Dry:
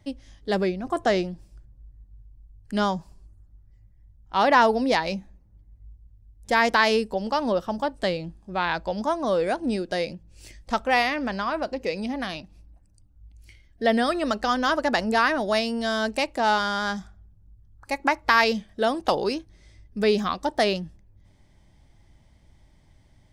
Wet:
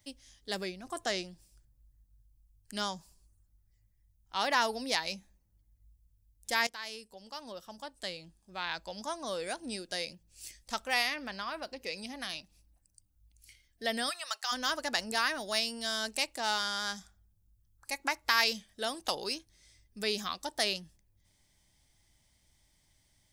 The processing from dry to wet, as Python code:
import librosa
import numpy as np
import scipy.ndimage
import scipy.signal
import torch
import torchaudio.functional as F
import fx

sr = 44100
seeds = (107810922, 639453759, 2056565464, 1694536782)

y = fx.peak_eq(x, sr, hz=7200.0, db=fx.line((11.14, -12.0), (11.92, -5.0)), octaves=0.68, at=(11.14, 11.92), fade=0.02)
y = fx.highpass(y, sr, hz=790.0, slope=24, at=(14.09, 14.51), fade=0.02)
y = fx.edit(y, sr, fx.fade_in_from(start_s=6.67, length_s=2.53, floor_db=-17.0), tone=tone)
y = librosa.effects.preemphasis(y, coef=0.9, zi=[0.0])
y = y * 10.0 ** (4.0 / 20.0)